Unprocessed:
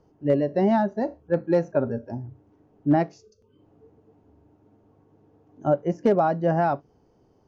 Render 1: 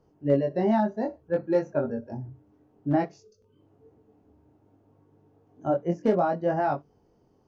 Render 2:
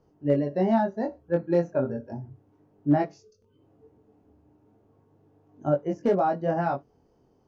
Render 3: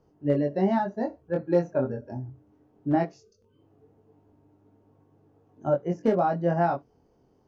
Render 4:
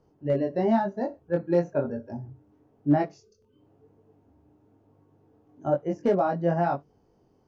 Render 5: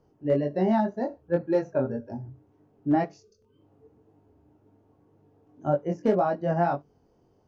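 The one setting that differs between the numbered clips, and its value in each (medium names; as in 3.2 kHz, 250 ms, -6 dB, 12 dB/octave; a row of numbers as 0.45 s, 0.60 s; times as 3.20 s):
chorus, rate: 0.59 Hz, 0.35 Hz, 0.22 Hz, 1 Hz, 1.9 Hz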